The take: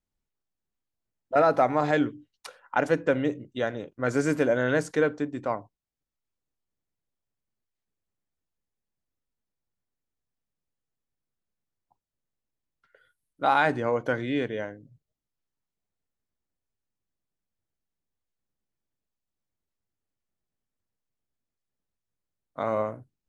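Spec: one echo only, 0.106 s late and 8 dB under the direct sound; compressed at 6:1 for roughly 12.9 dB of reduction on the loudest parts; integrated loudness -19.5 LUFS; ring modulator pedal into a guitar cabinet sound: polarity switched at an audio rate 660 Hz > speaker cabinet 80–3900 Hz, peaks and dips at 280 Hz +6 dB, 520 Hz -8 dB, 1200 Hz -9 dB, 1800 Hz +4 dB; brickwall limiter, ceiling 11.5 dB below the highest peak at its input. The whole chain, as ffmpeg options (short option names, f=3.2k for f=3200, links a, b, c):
-af "acompressor=threshold=-31dB:ratio=6,alimiter=level_in=4dB:limit=-24dB:level=0:latency=1,volume=-4dB,aecho=1:1:106:0.398,aeval=exprs='val(0)*sgn(sin(2*PI*660*n/s))':c=same,highpass=80,equalizer=f=280:t=q:w=4:g=6,equalizer=f=520:t=q:w=4:g=-8,equalizer=f=1.2k:t=q:w=4:g=-9,equalizer=f=1.8k:t=q:w=4:g=4,lowpass=f=3.9k:w=0.5412,lowpass=f=3.9k:w=1.3066,volume=21dB"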